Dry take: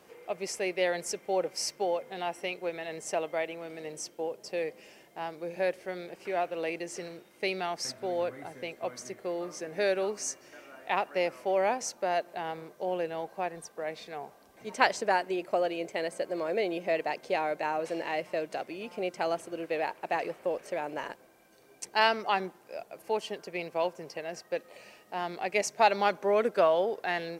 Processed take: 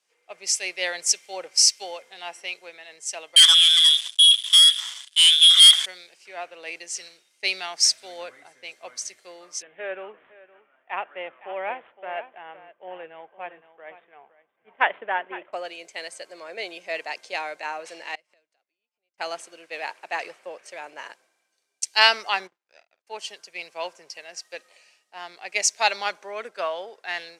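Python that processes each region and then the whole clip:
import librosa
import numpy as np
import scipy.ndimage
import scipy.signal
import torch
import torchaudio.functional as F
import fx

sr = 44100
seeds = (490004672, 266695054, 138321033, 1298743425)

y = fx.chain(x, sr, fx.freq_invert(carrier_hz=3800),
    fx.leveller(passes=5), at=(3.36, 5.86))
y = fx.chain(y, sr, fx.median_filter(points=15),
    fx.steep_lowpass(hz=3300.0, slope=96),
    fx.echo_single(ms=515, db=-11.0), at=(9.62, 15.53))
y = fx.chain(y, sr, fx.highpass(hz=63.0, slope=12),
    fx.gate_flip(shuts_db=-37.0, range_db=-26), at=(18.15, 19.18))
y = fx.chain(y, sr, fx.power_curve(exponent=2.0),
    fx.air_absorb(metres=89.0),
    fx.doubler(ms=49.0, db=-12.0), at=(22.47, 23.07))
y = fx.rider(y, sr, range_db=3, speed_s=2.0)
y = fx.weighting(y, sr, curve='ITU-R 468')
y = fx.band_widen(y, sr, depth_pct=70)
y = y * librosa.db_to_amplitude(-3.0)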